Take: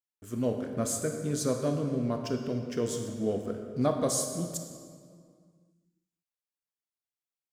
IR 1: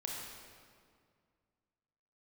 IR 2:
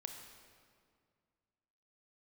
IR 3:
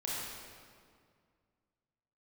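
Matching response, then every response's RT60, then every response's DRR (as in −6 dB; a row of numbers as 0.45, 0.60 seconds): 2; 2.1, 2.1, 2.1 seconds; −2.0, 4.0, −6.5 decibels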